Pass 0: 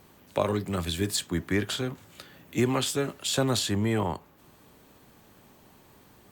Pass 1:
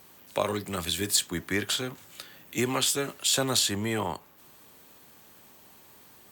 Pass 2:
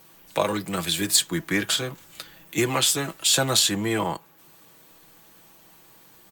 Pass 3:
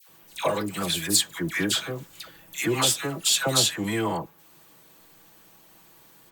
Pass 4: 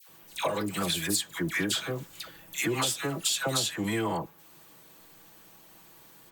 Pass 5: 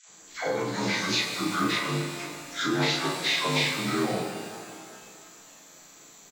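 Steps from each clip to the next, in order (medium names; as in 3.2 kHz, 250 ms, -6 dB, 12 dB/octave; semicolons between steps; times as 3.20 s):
tilt EQ +2 dB/octave
comb 6.1 ms, depth 59%; in parallel at -5.5 dB: hysteresis with a dead band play -34.5 dBFS
phase dispersion lows, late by 92 ms, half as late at 1.2 kHz; trim -1.5 dB
compression 6:1, threshold -25 dBFS, peak gain reduction 9 dB
frequency axis rescaled in octaves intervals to 80%; doubling 35 ms -2 dB; pitch-shifted reverb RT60 2.2 s, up +12 st, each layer -8 dB, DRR 4 dB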